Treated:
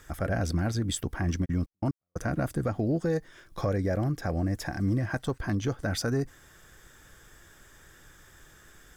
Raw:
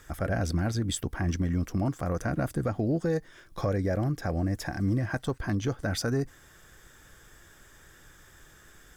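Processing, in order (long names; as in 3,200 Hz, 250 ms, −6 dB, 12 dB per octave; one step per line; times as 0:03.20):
0:01.44–0:02.27: gate pattern "..xx..x." 181 BPM −60 dB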